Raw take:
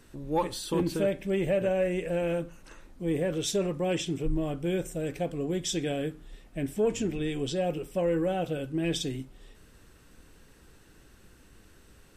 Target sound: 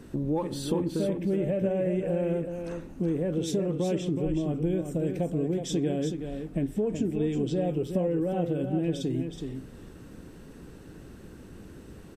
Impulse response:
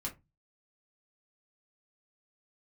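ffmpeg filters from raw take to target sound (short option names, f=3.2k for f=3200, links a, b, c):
-af "equalizer=f=220:w=0.31:g=14,acompressor=threshold=-26dB:ratio=6,aecho=1:1:372:0.447"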